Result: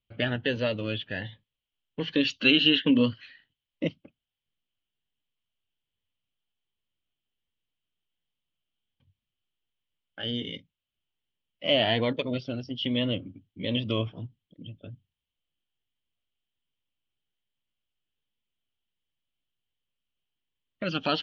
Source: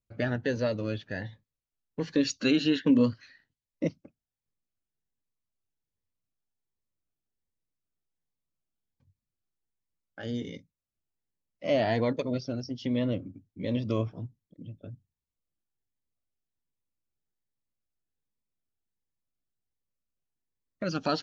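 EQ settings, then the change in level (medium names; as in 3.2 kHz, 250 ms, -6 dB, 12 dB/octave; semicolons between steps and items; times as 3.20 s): resonant low-pass 3.1 kHz, resonance Q 8; 0.0 dB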